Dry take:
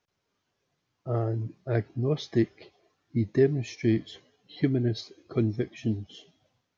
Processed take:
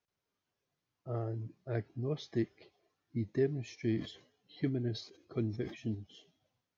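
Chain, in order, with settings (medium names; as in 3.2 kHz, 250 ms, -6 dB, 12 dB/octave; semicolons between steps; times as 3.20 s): 3.82–5.95 s: decay stretcher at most 120 dB/s; trim -9 dB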